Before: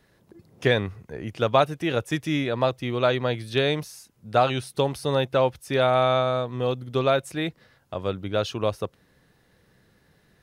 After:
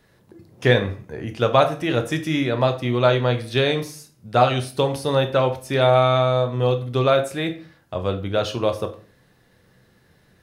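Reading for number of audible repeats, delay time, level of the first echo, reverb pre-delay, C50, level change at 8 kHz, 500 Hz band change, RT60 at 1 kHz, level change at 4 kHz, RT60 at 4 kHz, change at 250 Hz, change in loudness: no echo audible, no echo audible, no echo audible, 8 ms, 12.5 dB, +3.5 dB, +4.0 dB, 0.40 s, +3.5 dB, 0.35 s, +3.5 dB, +4.0 dB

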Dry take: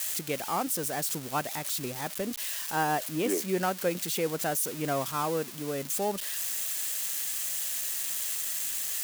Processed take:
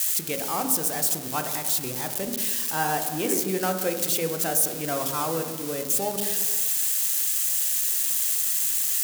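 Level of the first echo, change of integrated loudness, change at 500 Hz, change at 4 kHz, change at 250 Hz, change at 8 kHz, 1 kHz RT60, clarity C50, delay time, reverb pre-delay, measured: no echo audible, +6.5 dB, +2.0 dB, +4.5 dB, +2.5 dB, +7.5 dB, 1.6 s, 11.5 dB, no echo audible, 16 ms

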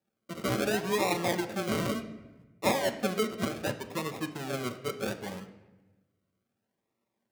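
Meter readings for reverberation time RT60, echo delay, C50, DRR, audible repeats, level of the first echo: 1.1 s, no echo audible, 11.5 dB, 4.5 dB, no echo audible, no echo audible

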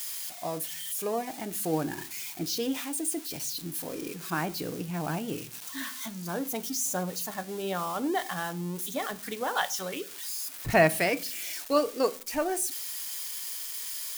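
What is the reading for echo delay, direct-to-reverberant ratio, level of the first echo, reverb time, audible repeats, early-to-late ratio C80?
no echo audible, 12.0 dB, no echo audible, 0.40 s, no echo audible, 26.0 dB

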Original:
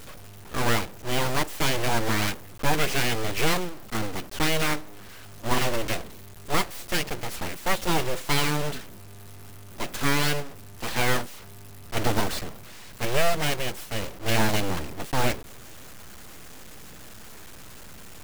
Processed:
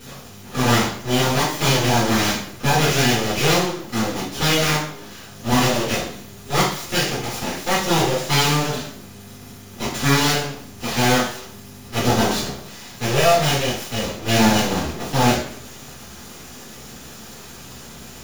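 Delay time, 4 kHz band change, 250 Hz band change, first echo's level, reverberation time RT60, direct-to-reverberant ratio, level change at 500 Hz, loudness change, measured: no echo audible, +8.0 dB, +9.5 dB, no echo audible, 0.60 s, −9.0 dB, +7.5 dB, +7.5 dB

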